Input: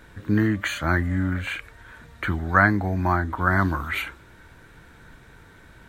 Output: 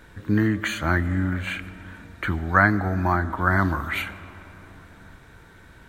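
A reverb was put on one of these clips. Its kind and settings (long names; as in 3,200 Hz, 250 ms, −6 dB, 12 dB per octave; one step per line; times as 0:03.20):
comb and all-pass reverb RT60 4.3 s, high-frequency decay 0.35×, pre-delay 55 ms, DRR 16 dB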